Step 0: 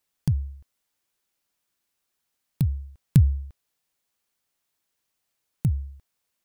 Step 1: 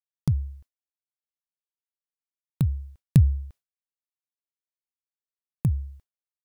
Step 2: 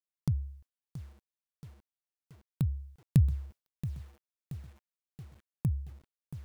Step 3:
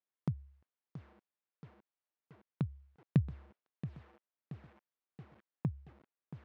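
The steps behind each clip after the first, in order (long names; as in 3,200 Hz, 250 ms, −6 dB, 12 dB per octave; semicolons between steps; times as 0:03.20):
downward expander −42 dBFS
feedback echo at a low word length 677 ms, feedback 55%, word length 7 bits, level −13 dB; level −6.5 dB
band-pass filter 210–2,100 Hz; level +3 dB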